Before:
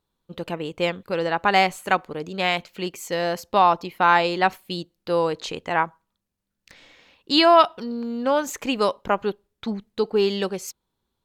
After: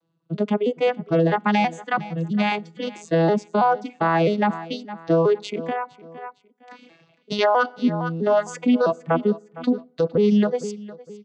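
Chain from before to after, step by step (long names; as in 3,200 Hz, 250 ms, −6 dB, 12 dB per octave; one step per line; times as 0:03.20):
vocoder with an arpeggio as carrier major triad, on E3, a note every 328 ms
feedback delay network reverb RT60 0.71 s, low-frequency decay 1.05×, high-frequency decay 0.6×, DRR 15.5 dB
reverb reduction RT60 1.4 s
0:01.36–0:02.52: parametric band 450 Hz −11.5 dB 1.2 octaves
repeating echo 459 ms, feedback 31%, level −20 dB
brickwall limiter −18.5 dBFS, peak gain reduction 11.5 dB
0:05.62–0:07.39: downward compressor 6 to 1, threshold −31 dBFS, peak gain reduction 8 dB
level +7.5 dB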